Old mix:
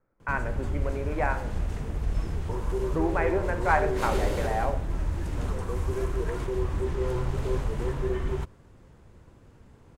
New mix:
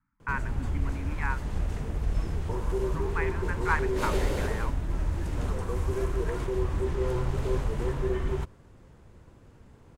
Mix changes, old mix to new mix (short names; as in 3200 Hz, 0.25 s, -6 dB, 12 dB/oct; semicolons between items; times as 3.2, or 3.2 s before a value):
speech: add Chebyshev band-stop 280–910 Hz, order 4; reverb: off